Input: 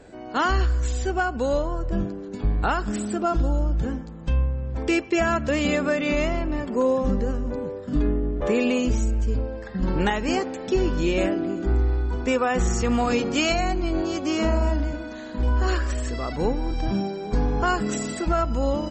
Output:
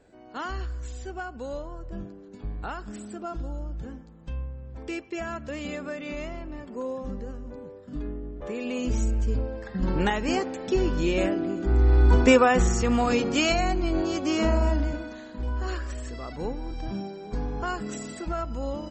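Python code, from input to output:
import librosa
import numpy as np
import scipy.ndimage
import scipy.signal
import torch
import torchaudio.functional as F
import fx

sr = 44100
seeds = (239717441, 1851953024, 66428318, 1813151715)

y = fx.gain(x, sr, db=fx.line((8.59, -11.5), (9.0, -2.0), (11.68, -2.0), (12.12, 9.5), (12.73, -1.0), (14.96, -1.0), (15.37, -8.0)))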